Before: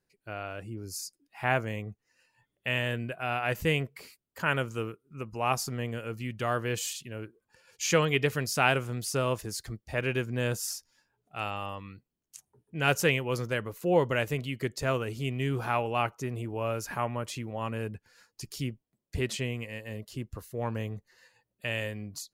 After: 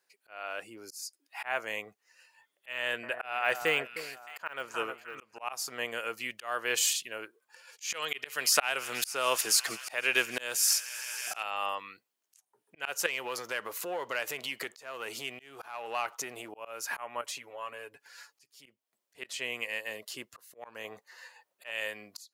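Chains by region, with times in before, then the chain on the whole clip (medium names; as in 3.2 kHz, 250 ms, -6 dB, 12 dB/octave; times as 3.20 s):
2.72–5.39 s: de-esser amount 95% + treble shelf 9.4 kHz -6 dB + echo whose repeats swap between lows and highs 309 ms, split 1.6 kHz, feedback 53%, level -12.5 dB
7.93–11.43 s: treble shelf 2.4 kHz +4.5 dB + feedback echo behind a high-pass 159 ms, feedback 79%, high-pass 1.8 kHz, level -22.5 dB + three bands compressed up and down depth 70%
13.06–16.49 s: compression 5:1, threshold -36 dBFS + waveshaping leveller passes 1
17.21–18.66 s: comb 7.1 ms, depth 74% + compression 2.5:1, threshold -45 dBFS
20.84–21.71 s: peaking EQ 860 Hz +6.5 dB 1.9 oct + hard clipper -17 dBFS
whole clip: high-pass 730 Hz 12 dB/octave; slow attack 343 ms; trim +7.5 dB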